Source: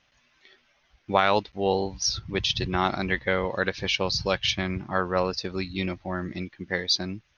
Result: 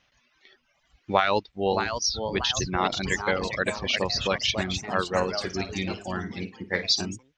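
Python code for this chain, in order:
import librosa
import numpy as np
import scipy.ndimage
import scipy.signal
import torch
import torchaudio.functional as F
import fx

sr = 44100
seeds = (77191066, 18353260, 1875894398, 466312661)

y = fx.echo_pitch(x, sr, ms=747, semitones=2, count=3, db_per_echo=-6.0)
y = fx.dereverb_blind(y, sr, rt60_s=1.0)
y = fx.room_flutter(y, sr, wall_m=9.4, rt60_s=0.23, at=(5.17, 7.04), fade=0.02)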